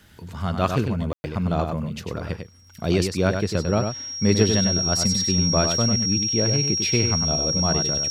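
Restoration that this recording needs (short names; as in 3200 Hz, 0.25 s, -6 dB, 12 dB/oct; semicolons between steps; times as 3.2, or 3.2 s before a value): de-click; notch 5600 Hz, Q 30; room tone fill 1.13–1.24; inverse comb 98 ms -6 dB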